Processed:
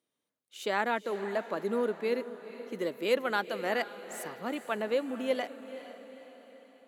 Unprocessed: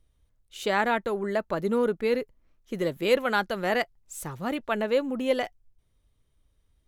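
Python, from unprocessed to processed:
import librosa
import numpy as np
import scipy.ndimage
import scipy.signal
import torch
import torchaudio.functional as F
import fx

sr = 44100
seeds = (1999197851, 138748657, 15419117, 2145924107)

y = scipy.signal.sosfilt(scipy.signal.butter(4, 210.0, 'highpass', fs=sr, output='sos'), x)
y = fx.echo_diffused(y, sr, ms=471, feedback_pct=50, wet_db=-13)
y = y * librosa.db_to_amplitude(-5.0)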